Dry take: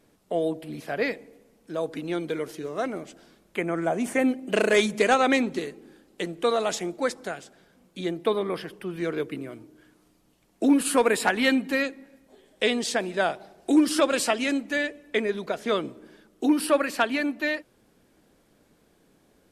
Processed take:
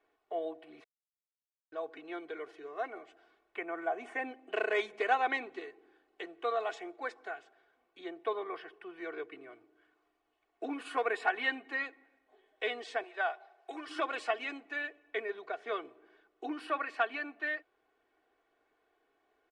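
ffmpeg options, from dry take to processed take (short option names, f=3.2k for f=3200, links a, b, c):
-filter_complex "[0:a]asettb=1/sr,asplit=3[a][b][c];[a]atrim=end=13.034[d];[b]atrim=start=13.03:end=13.88,asetpts=PTS-STARTPTS,afade=t=in:d=0.004:c=qsin,afade=t=out:st=0.846:d=0.004:c=qsin,highpass=560[e];[c]atrim=start=13.876[f];[d][e]acrossfade=d=0.004:c1=hsin:c2=qsin[g];[g][f]acrossfade=d=0.004:c1=qsin:c2=hsin,asplit=3[h][i][j];[h]atrim=end=0.84,asetpts=PTS-STARTPTS,afade=t=out:st=0.836:d=0.004:c=hsin[k];[i]atrim=start=0.84:end=1.72,asetpts=PTS-STARTPTS,volume=0[l];[j]atrim=start=1.72,asetpts=PTS-STARTPTS,afade=t=in:d=0.004:c=hsin[m];[k][l][m]concat=n=3:v=0:a=1,lowpass=f=9.1k:w=0.5412,lowpass=f=9.1k:w=1.3066,acrossover=split=470 2900:gain=0.0891 1 0.0891[n][o][p];[n][o][p]amix=inputs=3:normalize=0,aecho=1:1:2.7:0.74,volume=-8dB"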